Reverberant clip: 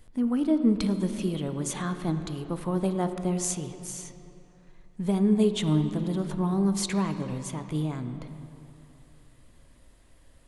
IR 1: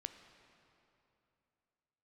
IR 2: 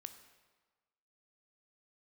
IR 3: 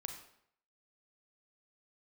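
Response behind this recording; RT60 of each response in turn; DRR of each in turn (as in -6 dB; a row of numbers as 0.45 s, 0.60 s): 1; 2.9 s, 1.4 s, 0.70 s; 8.0 dB, 8.5 dB, 4.5 dB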